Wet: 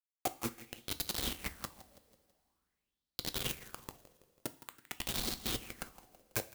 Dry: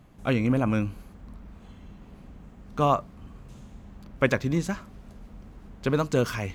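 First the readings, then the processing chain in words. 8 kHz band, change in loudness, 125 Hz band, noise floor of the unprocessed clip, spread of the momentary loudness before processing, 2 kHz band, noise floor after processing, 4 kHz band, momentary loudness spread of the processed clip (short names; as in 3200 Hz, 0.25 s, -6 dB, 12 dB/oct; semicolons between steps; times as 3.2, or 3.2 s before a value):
+4.0 dB, -13.0 dB, -20.0 dB, -50 dBFS, 10 LU, -12.0 dB, under -85 dBFS, +3.0 dB, 13 LU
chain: recorder AGC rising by 39 dB/s; flipped gate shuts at -14 dBFS, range -30 dB; dynamic EQ 420 Hz, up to +7 dB, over -46 dBFS, Q 1.3; small resonant body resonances 310/770/3200 Hz, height 7 dB, ringing for 30 ms; chopper 11 Hz, depth 60%, duty 20%; bit-crush 5-bit; compressor, threshold -28 dBFS, peak gain reduction 11 dB; pre-emphasis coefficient 0.8; feedback echo 0.164 s, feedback 49%, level -16 dB; two-slope reverb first 0.3 s, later 2.6 s, from -18 dB, DRR 10.5 dB; LFO bell 0.47 Hz 500–4200 Hz +12 dB; gain +4 dB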